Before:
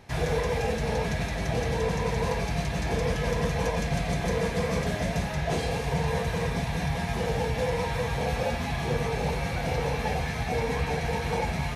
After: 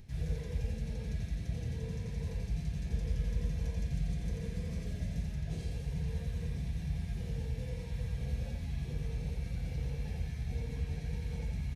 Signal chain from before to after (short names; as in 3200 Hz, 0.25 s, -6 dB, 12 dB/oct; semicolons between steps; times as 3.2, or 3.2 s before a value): upward compressor, threshold -36 dBFS; passive tone stack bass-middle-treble 10-0-1; echo 87 ms -4 dB; gain +3.5 dB